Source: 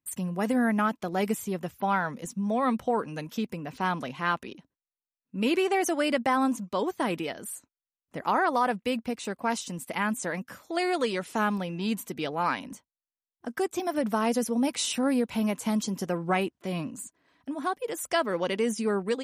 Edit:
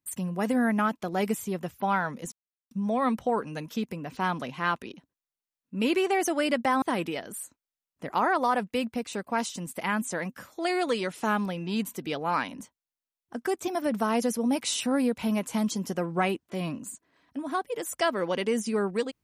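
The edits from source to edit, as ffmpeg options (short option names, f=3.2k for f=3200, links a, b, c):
-filter_complex "[0:a]asplit=3[a][b][c];[a]atrim=end=2.32,asetpts=PTS-STARTPTS,afade=t=out:st=2.316:d=0.004:c=hsin,apad=pad_dur=0.39[d];[b]atrim=start=2.32:end=6.432,asetpts=PTS-STARTPTS,afade=t=in:d=0.004:c=hsin[e];[c]atrim=start=6.938[f];[d][e]concat=n=2:v=0:a=1[g];[g][f]acrossfade=d=0.004:c1=hsin:c2=hsin"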